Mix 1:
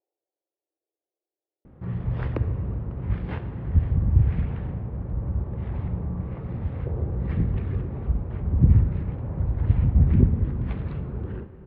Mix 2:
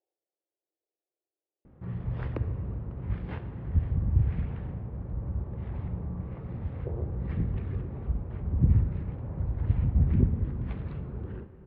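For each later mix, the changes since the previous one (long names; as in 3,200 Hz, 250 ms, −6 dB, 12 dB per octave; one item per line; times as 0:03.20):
speech: send −7.0 dB
background −5.5 dB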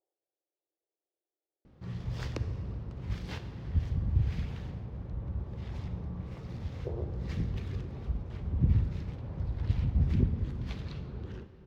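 background −3.5 dB
master: remove Bessel low-pass filter 1,600 Hz, order 4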